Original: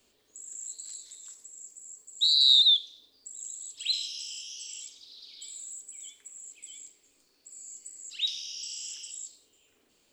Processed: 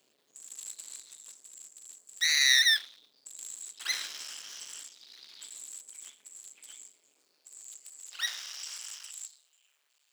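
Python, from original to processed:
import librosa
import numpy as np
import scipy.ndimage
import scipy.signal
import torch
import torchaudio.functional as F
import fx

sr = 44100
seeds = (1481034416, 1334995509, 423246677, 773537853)

y = fx.cycle_switch(x, sr, every=2, mode='muted')
y = fx.filter_sweep_highpass(y, sr, from_hz=200.0, to_hz=1300.0, start_s=6.58, end_s=9.68, q=0.78)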